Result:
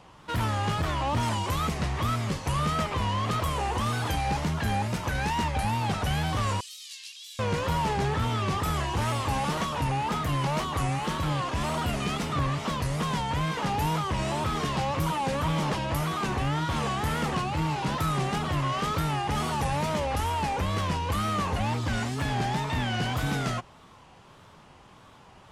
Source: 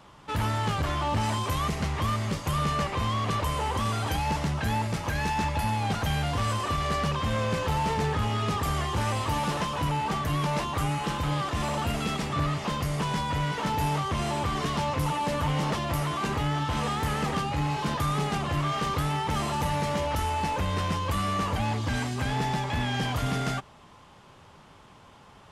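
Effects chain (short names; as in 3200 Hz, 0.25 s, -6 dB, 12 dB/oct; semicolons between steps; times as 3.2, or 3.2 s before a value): 6.6–7.4 inverse Chebyshev high-pass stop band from 780 Hz, stop band 70 dB; wow and flutter 150 cents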